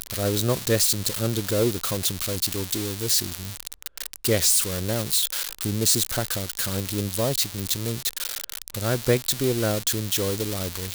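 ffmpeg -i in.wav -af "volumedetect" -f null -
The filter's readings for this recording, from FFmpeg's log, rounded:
mean_volume: -25.5 dB
max_volume: -7.3 dB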